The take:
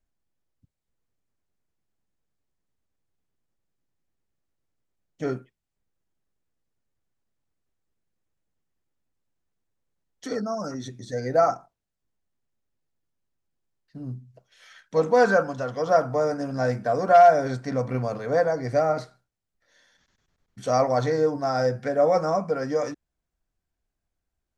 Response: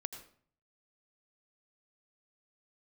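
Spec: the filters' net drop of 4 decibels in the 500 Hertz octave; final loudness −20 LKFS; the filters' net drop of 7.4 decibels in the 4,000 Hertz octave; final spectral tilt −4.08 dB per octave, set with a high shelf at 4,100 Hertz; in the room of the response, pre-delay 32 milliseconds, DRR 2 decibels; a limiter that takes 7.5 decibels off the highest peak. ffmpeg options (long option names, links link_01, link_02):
-filter_complex "[0:a]equalizer=frequency=500:width_type=o:gain=-5,equalizer=frequency=4000:width_type=o:gain=-6,highshelf=frequency=4100:gain=-5.5,alimiter=limit=-16dB:level=0:latency=1,asplit=2[link_01][link_02];[1:a]atrim=start_sample=2205,adelay=32[link_03];[link_02][link_03]afir=irnorm=-1:irlink=0,volume=-0.5dB[link_04];[link_01][link_04]amix=inputs=2:normalize=0,volume=6.5dB"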